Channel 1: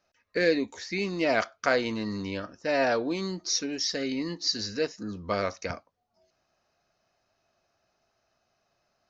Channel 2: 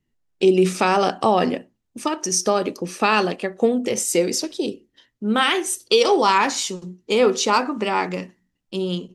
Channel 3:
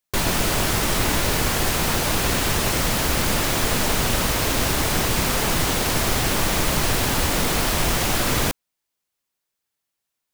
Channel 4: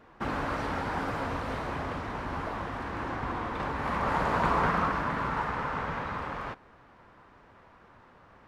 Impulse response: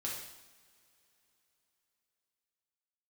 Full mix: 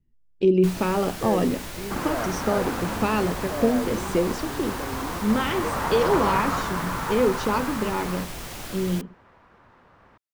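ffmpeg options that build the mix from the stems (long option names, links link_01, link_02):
-filter_complex "[0:a]lowpass=1100,adelay=850,volume=-4.5dB[link_01];[1:a]aemphasis=mode=reproduction:type=riaa,bandreject=frequency=750:width=12,volume=-7.5dB[link_02];[2:a]adelay=500,volume=-15dB[link_03];[3:a]adelay=1700,volume=1dB[link_04];[link_01][link_02][link_03][link_04]amix=inputs=4:normalize=0"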